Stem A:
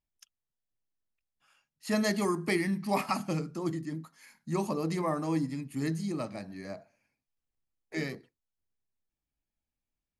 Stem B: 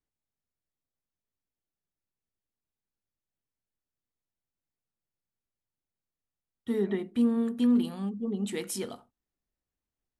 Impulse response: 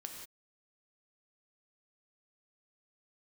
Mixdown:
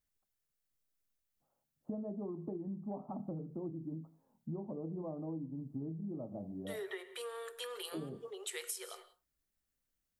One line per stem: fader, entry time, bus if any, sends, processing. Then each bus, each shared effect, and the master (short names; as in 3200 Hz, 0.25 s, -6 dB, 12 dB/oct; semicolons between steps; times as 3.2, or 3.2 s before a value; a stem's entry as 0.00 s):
-0.5 dB, 0.00 s, send -20 dB, inverse Chebyshev low-pass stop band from 1900 Hz, stop band 50 dB
-1.5 dB, 0.00 s, send -5.5 dB, rippled Chebyshev high-pass 370 Hz, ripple 6 dB; tilt +3.5 dB/oct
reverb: on, pre-delay 3 ms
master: compressor 12:1, threshold -38 dBFS, peak gain reduction 14 dB